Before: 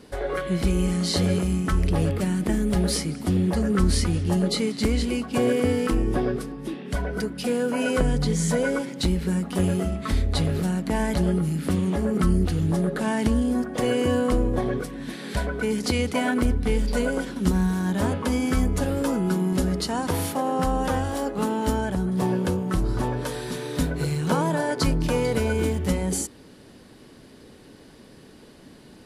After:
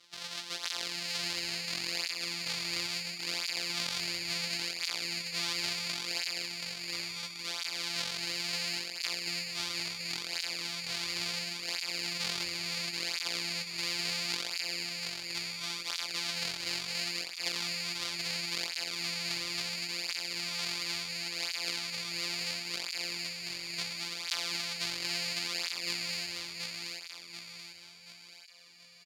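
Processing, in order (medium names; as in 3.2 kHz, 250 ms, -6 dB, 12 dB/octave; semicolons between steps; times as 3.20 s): sorted samples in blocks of 256 samples; band-pass filter 4.4 kHz, Q 2.1; feedback delay 731 ms, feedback 47%, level -3.5 dB; cancelling through-zero flanger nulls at 0.72 Hz, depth 4.7 ms; trim +5.5 dB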